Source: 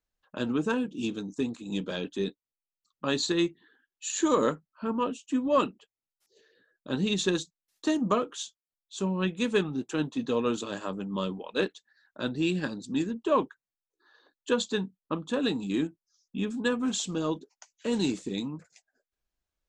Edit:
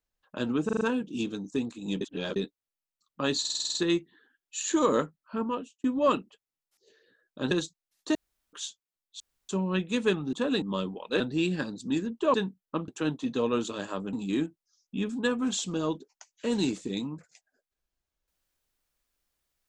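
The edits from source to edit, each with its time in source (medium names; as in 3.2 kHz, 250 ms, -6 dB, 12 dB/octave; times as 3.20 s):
0.65 s: stutter 0.04 s, 5 plays
1.85–2.20 s: reverse
3.24 s: stutter 0.05 s, 8 plays
4.89–5.33 s: fade out
7.00–7.28 s: delete
7.92–8.30 s: room tone
8.97 s: insert room tone 0.29 s
9.81–11.06 s: swap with 15.25–15.54 s
11.64–12.24 s: delete
13.38–14.71 s: delete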